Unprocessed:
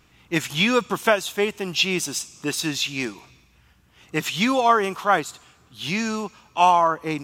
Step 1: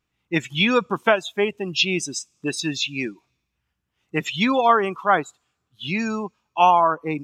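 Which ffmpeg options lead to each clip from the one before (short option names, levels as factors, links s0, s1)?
-af "afftdn=nr=21:nf=-29,volume=1.12"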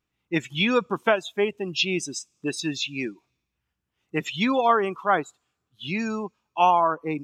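-af "equalizer=f=370:t=o:w=1.4:g=2.5,volume=0.631"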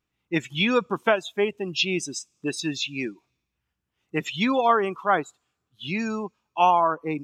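-af anull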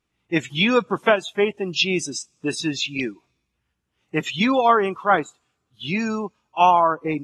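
-af "volume=1.5" -ar 32000 -c:a aac -b:a 32k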